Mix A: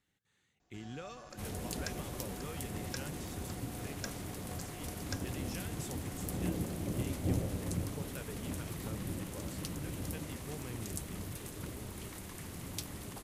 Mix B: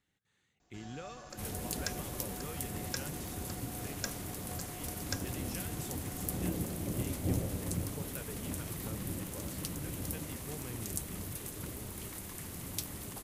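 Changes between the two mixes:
speech: add treble shelf 8.7 kHz -11.5 dB; first sound +3.0 dB; master: add treble shelf 10 kHz +10.5 dB

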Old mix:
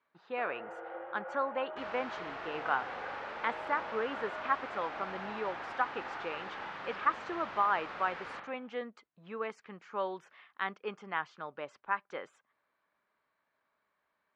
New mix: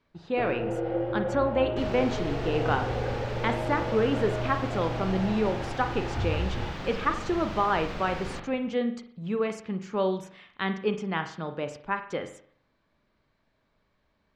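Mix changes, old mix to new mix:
speech: send on; first sound: remove band-pass filter 1.3 kHz, Q 0.9; master: remove band-pass filter 1.3 kHz, Q 1.1

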